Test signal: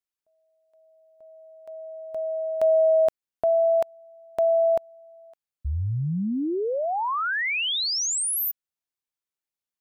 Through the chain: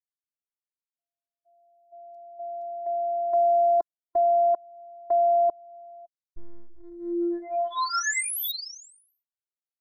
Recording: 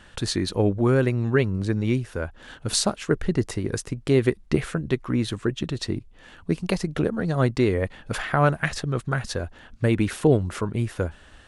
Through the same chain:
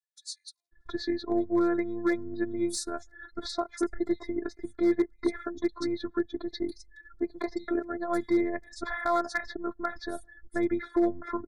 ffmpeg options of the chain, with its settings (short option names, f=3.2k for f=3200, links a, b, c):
-filter_complex "[0:a]afftdn=nr=36:nf=-39,bass=f=250:g=-6,treble=f=4k:g=-5,asplit=2[a][b];[b]acompressor=threshold=-31dB:ratio=12:attack=0.12:release=318:knee=1:detection=rms,volume=3dB[c];[a][c]amix=inputs=2:normalize=0,acrossover=split=4500[d][e];[d]adelay=720[f];[f][e]amix=inputs=2:normalize=0,afftfilt=real='hypot(re,im)*cos(PI*b)':imag='0':win_size=512:overlap=0.75,volume=15dB,asoftclip=hard,volume=-15dB,asuperstop=centerf=2800:order=8:qfactor=2.2,volume=-2dB"